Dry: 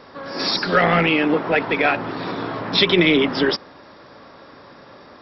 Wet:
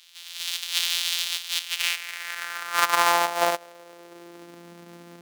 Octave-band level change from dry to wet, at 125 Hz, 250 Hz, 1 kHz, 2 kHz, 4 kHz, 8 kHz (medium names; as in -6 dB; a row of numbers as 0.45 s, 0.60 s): -24.5 dB, -23.5 dB, -2.0 dB, -6.5 dB, -3.5 dB, no reading